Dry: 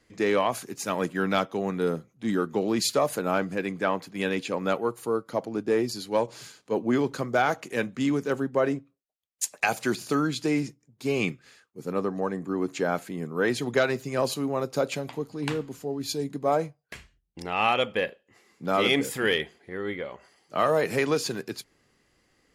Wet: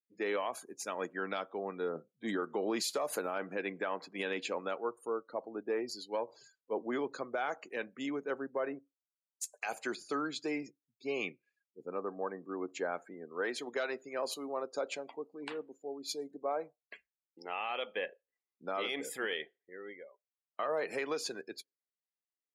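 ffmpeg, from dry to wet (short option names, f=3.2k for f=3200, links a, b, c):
-filter_complex "[0:a]asettb=1/sr,asplit=3[a][b][c];[a]atrim=end=1.954[d];[b]atrim=start=1.95:end=4.61,asetpts=PTS-STARTPTS,afade=t=in:d=0.004:c=qsin,afade=t=out:st=2.656:d=0.004:c=qsin,acontrast=27[e];[c]atrim=start=4.606[f];[d][e]acrossfade=d=0.004:c1=hsin:c2=qsin[g];[g][f]acrossfade=d=0.004:c1=qsin:c2=hsin,asettb=1/sr,asplit=3[h][i][j];[h]atrim=end=13.144[k];[i]atrim=start=13.14:end=17.97,asetpts=PTS-STARTPTS,afade=t=in:d=0.004:c=qsin,afade=t=out:st=4.826:d=0.004:c=qsin,equalizer=f=98:w=1.3:g=-13.5[l];[j]atrim=start=17.966[m];[k][l]acrossfade=d=0.004:c1=hsin:c2=qsin[n];[n][m]acrossfade=d=0.004:c1=qsin:c2=hsin,asplit=2[o][p];[o]atrim=end=20.59,asetpts=PTS-STARTPTS,afade=t=out:st=19.21:d=1.38[q];[p]atrim=start=20.59,asetpts=PTS-STARTPTS,afade=t=in:d=0.004:c=hsin[r];[q][r]concat=n=2:v=0:a=1,afftdn=nr=34:nf=-42,highpass=380,alimiter=limit=-18.5dB:level=0:latency=1:release=122,volume=-6.5dB"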